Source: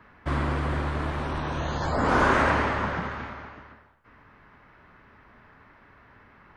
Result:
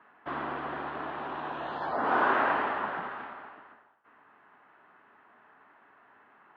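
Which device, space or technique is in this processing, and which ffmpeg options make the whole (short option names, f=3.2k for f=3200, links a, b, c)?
phone earpiece: -af "highpass=360,equalizer=f=530:t=q:w=4:g=-5,equalizer=f=750:t=q:w=4:g=4,equalizer=f=2.2k:t=q:w=4:g=-7,lowpass=f=3.1k:w=0.5412,lowpass=f=3.1k:w=1.3066,volume=-3dB"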